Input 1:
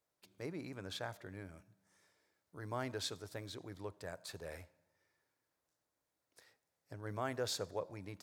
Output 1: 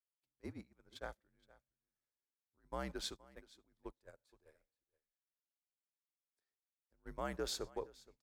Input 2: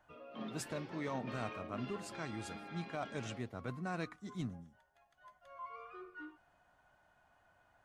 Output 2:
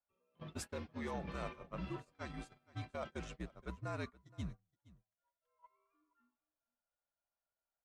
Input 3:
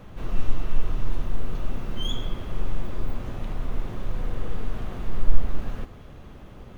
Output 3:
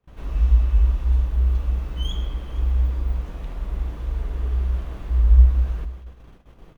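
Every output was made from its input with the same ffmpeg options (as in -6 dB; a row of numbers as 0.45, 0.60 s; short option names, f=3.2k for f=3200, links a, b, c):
-af "afreqshift=-63,agate=range=-27dB:threshold=-42dB:ratio=16:detection=peak,aecho=1:1:470:0.0841,volume=-2dB"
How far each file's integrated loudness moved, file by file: -2.0, -2.5, +11.5 LU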